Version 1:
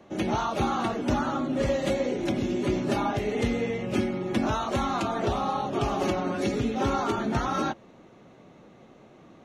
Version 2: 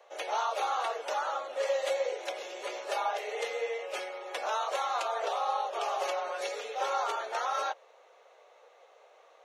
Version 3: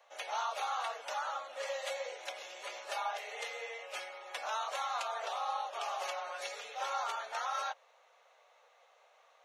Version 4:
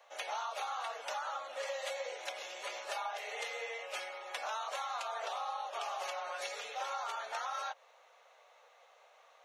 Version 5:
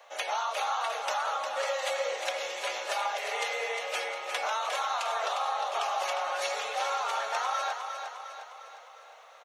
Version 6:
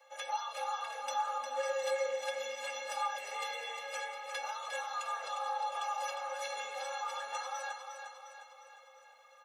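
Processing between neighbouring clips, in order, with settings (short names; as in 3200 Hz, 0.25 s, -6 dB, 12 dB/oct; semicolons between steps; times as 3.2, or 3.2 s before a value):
Chebyshev high-pass 470 Hz, order 5; gain -1.5 dB
bell 380 Hz -14.5 dB 1.1 oct; gain -2.5 dB
compressor, threshold -38 dBFS, peak gain reduction 6.5 dB; gain +2.5 dB
feedback echo 0.355 s, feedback 53%, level -7 dB; gain +7.5 dB
metallic resonator 250 Hz, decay 0.23 s, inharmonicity 0.03; gain +5.5 dB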